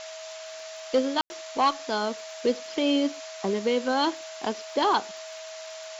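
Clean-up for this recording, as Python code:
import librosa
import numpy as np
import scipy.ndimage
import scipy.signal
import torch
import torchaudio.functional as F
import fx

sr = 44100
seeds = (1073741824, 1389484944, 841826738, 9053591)

y = fx.fix_declick_ar(x, sr, threshold=6.5)
y = fx.notch(y, sr, hz=640.0, q=30.0)
y = fx.fix_ambience(y, sr, seeds[0], print_start_s=0.1, print_end_s=0.6, start_s=1.21, end_s=1.3)
y = fx.noise_reduce(y, sr, print_start_s=0.36, print_end_s=0.86, reduce_db=30.0)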